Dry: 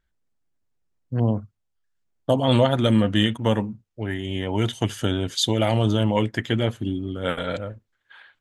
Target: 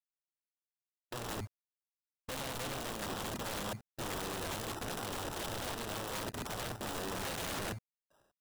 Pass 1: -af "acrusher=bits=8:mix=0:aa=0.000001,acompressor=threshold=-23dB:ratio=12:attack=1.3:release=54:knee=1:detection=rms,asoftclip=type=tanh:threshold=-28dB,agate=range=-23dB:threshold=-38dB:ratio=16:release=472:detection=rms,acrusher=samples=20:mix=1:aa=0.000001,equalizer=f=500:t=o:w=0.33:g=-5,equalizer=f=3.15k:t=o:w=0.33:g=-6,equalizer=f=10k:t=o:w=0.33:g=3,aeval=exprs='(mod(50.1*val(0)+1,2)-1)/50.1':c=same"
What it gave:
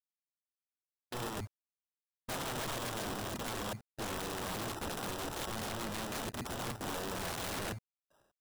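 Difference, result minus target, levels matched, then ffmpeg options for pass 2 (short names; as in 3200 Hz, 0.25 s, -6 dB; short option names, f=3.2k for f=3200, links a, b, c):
compressor: peak gain reduction +7.5 dB
-af "acrusher=bits=8:mix=0:aa=0.000001,acompressor=threshold=-15dB:ratio=12:attack=1.3:release=54:knee=1:detection=rms,asoftclip=type=tanh:threshold=-28dB,agate=range=-23dB:threshold=-38dB:ratio=16:release=472:detection=rms,acrusher=samples=20:mix=1:aa=0.000001,equalizer=f=500:t=o:w=0.33:g=-5,equalizer=f=3.15k:t=o:w=0.33:g=-6,equalizer=f=10k:t=o:w=0.33:g=3,aeval=exprs='(mod(50.1*val(0)+1,2)-1)/50.1':c=same"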